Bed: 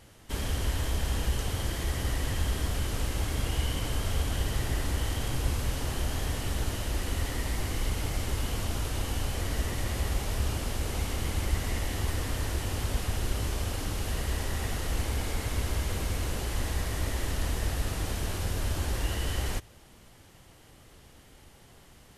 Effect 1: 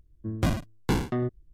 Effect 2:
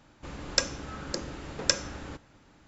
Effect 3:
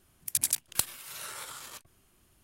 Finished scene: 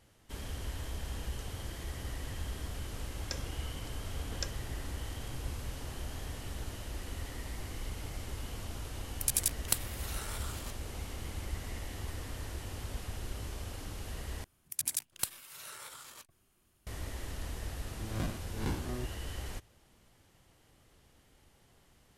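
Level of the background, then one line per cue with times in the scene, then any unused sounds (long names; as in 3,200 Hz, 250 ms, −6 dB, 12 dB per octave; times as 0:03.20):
bed −10 dB
0:02.73: mix in 2 −11.5 dB + amplitude tremolo 1.3 Hz, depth 81%
0:08.93: mix in 3 −2.5 dB
0:14.44: overwrite with 3 −6 dB
0:17.77: mix in 1 −12.5 dB + peak hold with a rise ahead of every peak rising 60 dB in 0.47 s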